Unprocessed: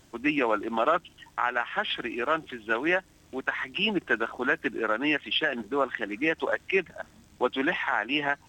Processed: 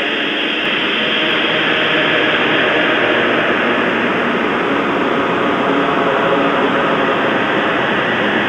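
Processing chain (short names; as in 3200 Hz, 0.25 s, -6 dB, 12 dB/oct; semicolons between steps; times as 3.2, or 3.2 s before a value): per-bin compression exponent 0.4; Paulstretch 11×, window 0.50 s, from 5.23; echoes that change speed 0.655 s, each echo -5 st, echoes 3, each echo -6 dB; gain +6 dB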